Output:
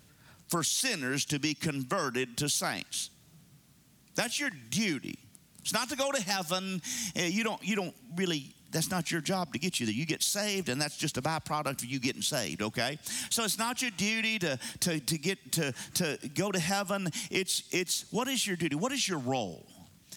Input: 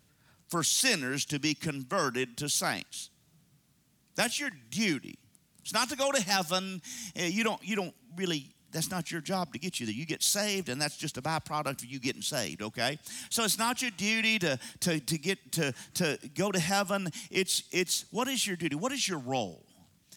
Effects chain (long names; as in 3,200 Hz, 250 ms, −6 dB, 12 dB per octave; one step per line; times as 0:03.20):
downward compressor, threshold −34 dBFS, peak gain reduction 12 dB
level +6.5 dB